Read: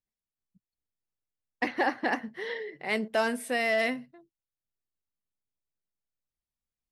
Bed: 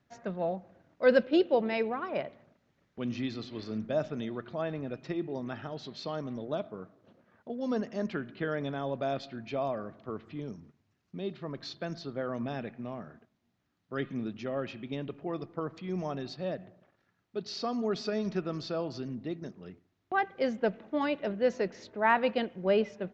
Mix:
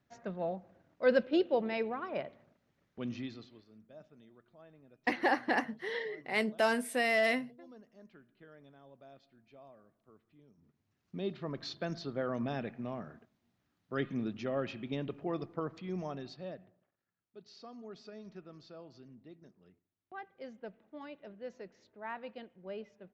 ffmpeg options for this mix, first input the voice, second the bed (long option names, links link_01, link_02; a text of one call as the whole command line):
ffmpeg -i stem1.wav -i stem2.wav -filter_complex "[0:a]adelay=3450,volume=-2dB[link_01];[1:a]volume=19dB,afade=type=out:start_time=3.04:duration=0.6:silence=0.105925,afade=type=in:start_time=10.55:duration=0.63:silence=0.0707946,afade=type=out:start_time=15.35:duration=1.56:silence=0.149624[link_02];[link_01][link_02]amix=inputs=2:normalize=0" out.wav